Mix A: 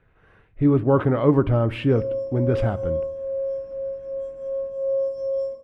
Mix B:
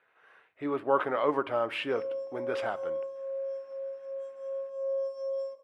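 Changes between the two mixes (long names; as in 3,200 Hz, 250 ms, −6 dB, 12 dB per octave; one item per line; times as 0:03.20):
background: send −9.5 dB
master: add high-pass filter 700 Hz 12 dB per octave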